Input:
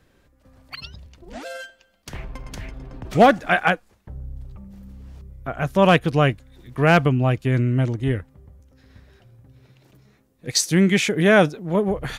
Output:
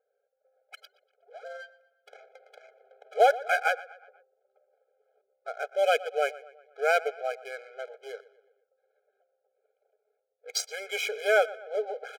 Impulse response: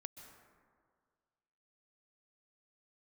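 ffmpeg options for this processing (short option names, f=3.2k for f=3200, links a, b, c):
-filter_complex "[0:a]adynamicsmooth=sensitivity=5.5:basefreq=660,asplit=2[a][b];[b]adelay=121,lowpass=f=3.7k:p=1,volume=-18dB,asplit=2[c][d];[d]adelay=121,lowpass=f=3.7k:p=1,volume=0.52,asplit=2[e][f];[f]adelay=121,lowpass=f=3.7k:p=1,volume=0.52,asplit=2[g][h];[h]adelay=121,lowpass=f=3.7k:p=1,volume=0.52[i];[a][c][e][g][i]amix=inputs=5:normalize=0,afftfilt=real='re*eq(mod(floor(b*sr/1024/420),2),1)':imag='im*eq(mod(floor(b*sr/1024/420),2),1)':win_size=1024:overlap=0.75,volume=-6dB"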